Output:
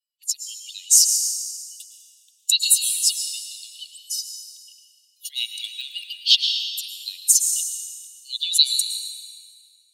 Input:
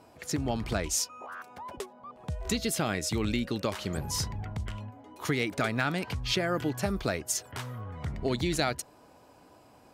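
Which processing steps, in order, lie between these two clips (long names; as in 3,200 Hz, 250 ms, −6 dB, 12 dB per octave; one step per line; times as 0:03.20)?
spectral dynamics exaggerated over time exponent 2
0:03.12–0:05.30: downward compressor 10 to 1, threshold −44 dBFS, peak gain reduction 15 dB
Chebyshev high-pass with heavy ripple 2,800 Hz, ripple 6 dB
dense smooth reverb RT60 3.1 s, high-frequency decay 0.55×, pre-delay 95 ms, DRR 4.5 dB
boost into a limiter +25.5 dB
level −1 dB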